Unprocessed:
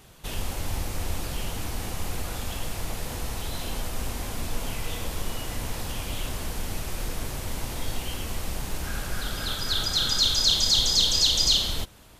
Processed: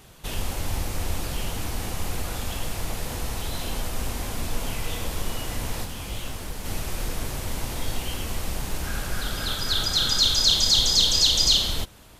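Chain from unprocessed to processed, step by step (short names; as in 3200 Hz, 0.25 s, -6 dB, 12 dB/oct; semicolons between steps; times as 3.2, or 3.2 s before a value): 5.84–6.64 detuned doubles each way 39 cents -> 57 cents; gain +2 dB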